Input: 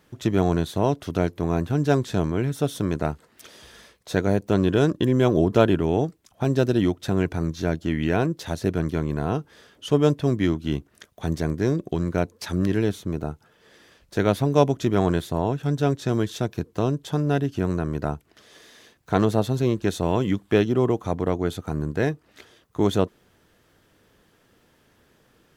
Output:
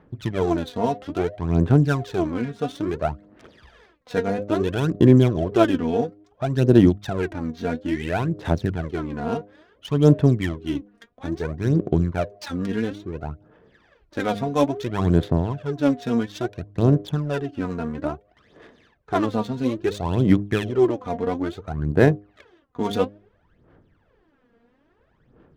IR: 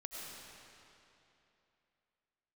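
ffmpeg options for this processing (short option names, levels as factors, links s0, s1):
-af "bandreject=f=102:t=h:w=4,bandreject=f=204:t=h:w=4,bandreject=f=306:t=h:w=4,bandreject=f=408:t=h:w=4,bandreject=f=510:t=h:w=4,bandreject=f=612:t=h:w=4,bandreject=f=714:t=h:w=4,aphaser=in_gain=1:out_gain=1:delay=4.3:decay=0.73:speed=0.59:type=sinusoidal,adynamicsmooth=sensitivity=6:basefreq=1800,volume=0.708"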